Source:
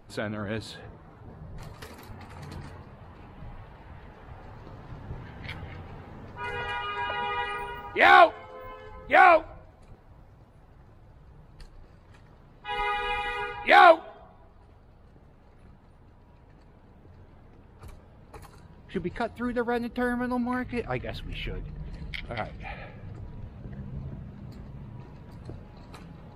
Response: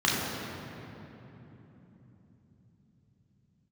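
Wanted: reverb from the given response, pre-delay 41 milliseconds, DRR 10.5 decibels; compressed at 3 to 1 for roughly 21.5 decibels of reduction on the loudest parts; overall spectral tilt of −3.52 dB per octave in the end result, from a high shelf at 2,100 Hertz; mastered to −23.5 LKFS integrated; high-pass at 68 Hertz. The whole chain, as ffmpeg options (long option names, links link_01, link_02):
-filter_complex "[0:a]highpass=68,highshelf=frequency=2100:gain=8,acompressor=threshold=-40dB:ratio=3,asplit=2[link_01][link_02];[1:a]atrim=start_sample=2205,adelay=41[link_03];[link_02][link_03]afir=irnorm=-1:irlink=0,volume=-25.5dB[link_04];[link_01][link_04]amix=inputs=2:normalize=0,volume=17.5dB"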